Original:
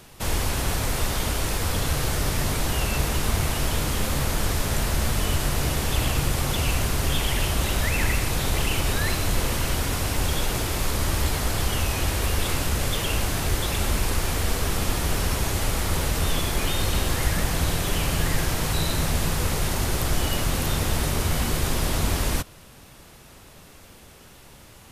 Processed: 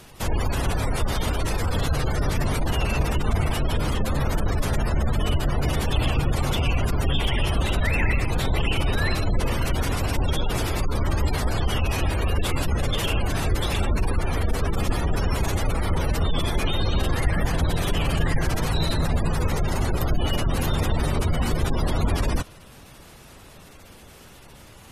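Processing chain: spectral gate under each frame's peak -25 dB strong; gain +2 dB

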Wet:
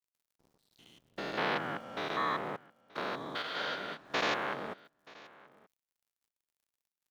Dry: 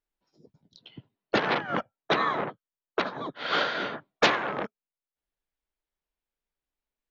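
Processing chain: stepped spectrum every 0.2 s; high shelf 5100 Hz +5.5 dB; in parallel at 0 dB: compressor, threshold -42 dBFS, peak gain reduction 16.5 dB; on the sum: crackle 180/s -53 dBFS; crossover distortion -54.5 dBFS; on a send: echo 0.929 s -22 dB; 3.42–4.1 on the sum: detuned doubles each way 44 cents; gain -4.5 dB

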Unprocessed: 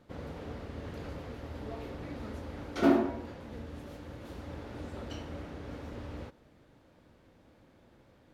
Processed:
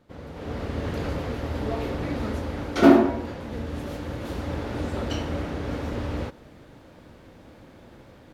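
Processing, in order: AGC gain up to 12.5 dB

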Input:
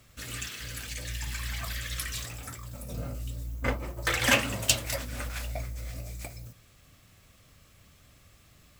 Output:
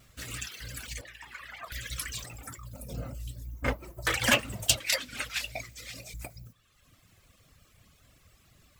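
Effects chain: 4.8–6.14 weighting filter D; reverb removal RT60 1.2 s; 1.01–1.72 three-band isolator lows -22 dB, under 350 Hz, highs -17 dB, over 2700 Hz; shaped vibrato saw down 5.8 Hz, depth 100 cents

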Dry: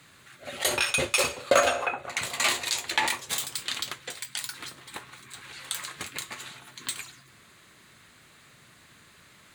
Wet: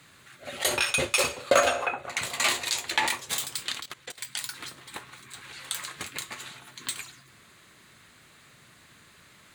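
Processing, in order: 3.72–4.18 level quantiser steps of 19 dB

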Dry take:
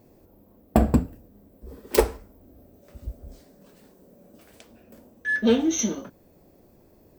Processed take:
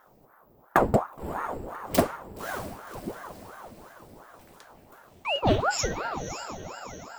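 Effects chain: diffused feedback echo 0.568 s, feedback 50%, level -9.5 dB; ring modulator with a swept carrier 650 Hz, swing 80%, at 2.8 Hz

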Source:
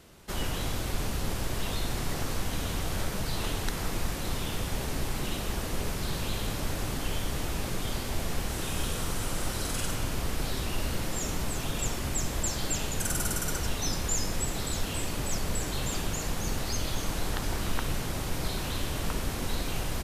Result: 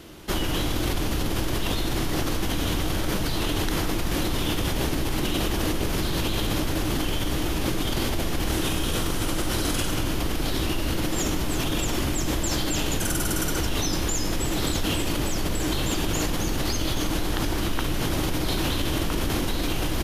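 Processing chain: thirty-one-band EQ 315 Hz +10 dB, 3150 Hz +4 dB, 8000 Hz -5 dB; in parallel at -1 dB: negative-ratio compressor -32 dBFS, ratio -0.5; on the sum: gain +1 dB

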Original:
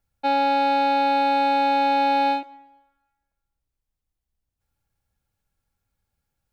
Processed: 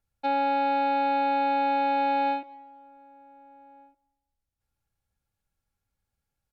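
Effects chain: treble ducked by the level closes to 2900 Hz, closed at -21 dBFS; outdoor echo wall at 260 m, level -26 dB; gain -4.5 dB

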